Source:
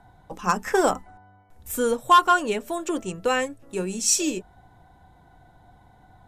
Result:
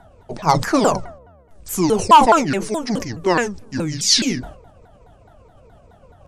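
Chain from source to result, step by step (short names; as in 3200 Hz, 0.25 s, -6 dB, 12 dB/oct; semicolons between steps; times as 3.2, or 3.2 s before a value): repeated pitch sweeps -9 st, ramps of 0.211 s; sustainer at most 98 dB/s; gain +6.5 dB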